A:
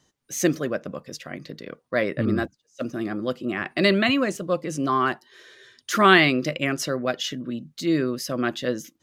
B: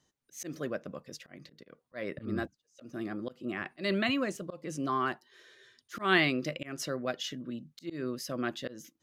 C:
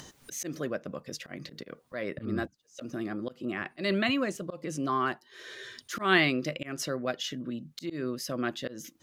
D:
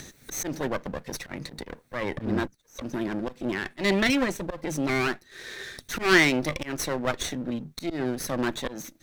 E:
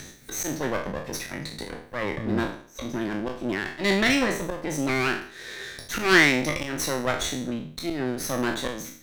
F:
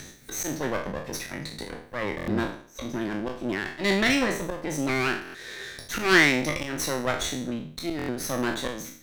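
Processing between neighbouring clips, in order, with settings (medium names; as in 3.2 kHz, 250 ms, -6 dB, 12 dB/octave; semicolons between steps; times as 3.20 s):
slow attack 174 ms; trim -8.5 dB
upward compressor, threshold -33 dBFS; trim +2 dB
comb filter that takes the minimum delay 0.51 ms; trim +6 dB
spectral sustain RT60 0.51 s
buffer glitch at 2.16/5.23/7.97 s, samples 1024, times 4; trim -1 dB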